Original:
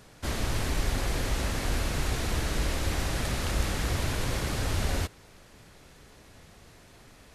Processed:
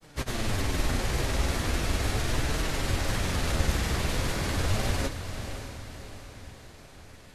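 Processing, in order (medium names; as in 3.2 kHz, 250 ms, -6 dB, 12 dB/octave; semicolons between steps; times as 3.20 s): granulator, pitch spread up and down by 0 st; flange 0.38 Hz, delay 6 ms, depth 9.3 ms, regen +53%; echo that smears into a reverb 583 ms, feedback 47%, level -9 dB; trim +6.5 dB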